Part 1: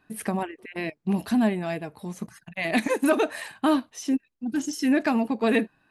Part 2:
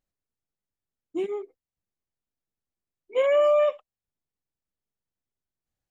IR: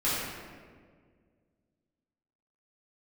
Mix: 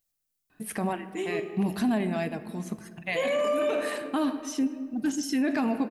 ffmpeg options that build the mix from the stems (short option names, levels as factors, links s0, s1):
-filter_complex "[0:a]adelay=500,volume=0.891,asplit=2[s0][s1];[s1]volume=0.0794[s2];[1:a]crystalizer=i=5.5:c=0,asoftclip=type=hard:threshold=0.251,volume=0.473,asplit=3[s3][s4][s5];[s4]volume=0.251[s6];[s5]apad=whole_len=282276[s7];[s0][s7]sidechaincompress=threshold=0.0178:ratio=8:attack=16:release=130[s8];[2:a]atrim=start_sample=2205[s9];[s2][s6]amix=inputs=2:normalize=0[s10];[s10][s9]afir=irnorm=-1:irlink=0[s11];[s8][s3][s11]amix=inputs=3:normalize=0,alimiter=limit=0.106:level=0:latency=1:release=11"